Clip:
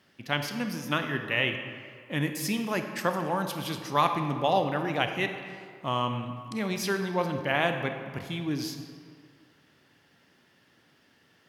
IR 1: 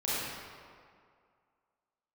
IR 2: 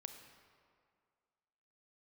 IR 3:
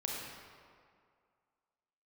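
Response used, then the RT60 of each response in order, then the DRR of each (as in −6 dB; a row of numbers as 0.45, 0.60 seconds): 2; 2.2, 2.1, 2.2 seconds; −10.5, 6.0, −3.0 decibels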